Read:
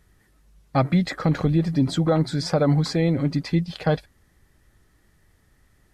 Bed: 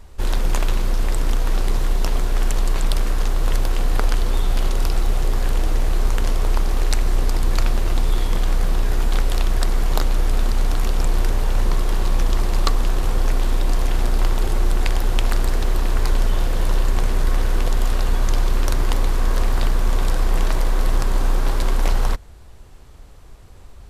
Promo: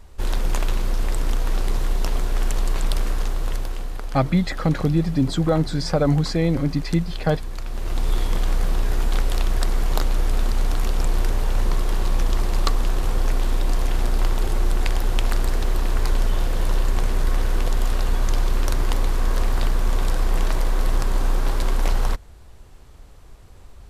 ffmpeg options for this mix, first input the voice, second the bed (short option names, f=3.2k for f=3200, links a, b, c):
-filter_complex "[0:a]adelay=3400,volume=0.5dB[a];[1:a]volume=8dB,afade=t=out:st=3.08:d=0.91:silence=0.316228,afade=t=in:st=7.66:d=0.47:silence=0.298538[b];[a][b]amix=inputs=2:normalize=0"